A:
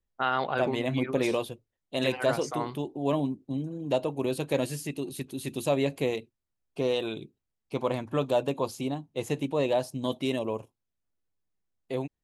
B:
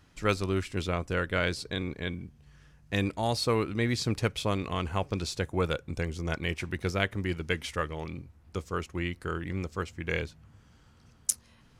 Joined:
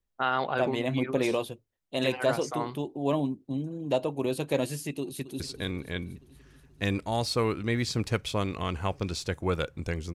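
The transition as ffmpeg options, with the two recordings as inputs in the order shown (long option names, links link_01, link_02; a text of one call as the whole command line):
ffmpeg -i cue0.wav -i cue1.wav -filter_complex "[0:a]apad=whole_dur=10.14,atrim=end=10.14,atrim=end=5.402[link_01];[1:a]atrim=start=1.508:end=6.25[link_02];[link_01][link_02]acrossfade=duration=0.004:curve1=hsin:curve2=hsin,asplit=2[link_03][link_04];[link_04]afade=type=in:start_time=5.01:duration=0.01,afade=type=out:start_time=5.4:duration=0.01,aecho=0:1:240|480|720|960|1200|1440|1680|1920|2160:0.237137|0.165996|0.116197|0.0813381|0.0569367|0.0398557|0.027899|0.0195293|0.0136705[link_05];[link_03][link_05]amix=inputs=2:normalize=0" out.wav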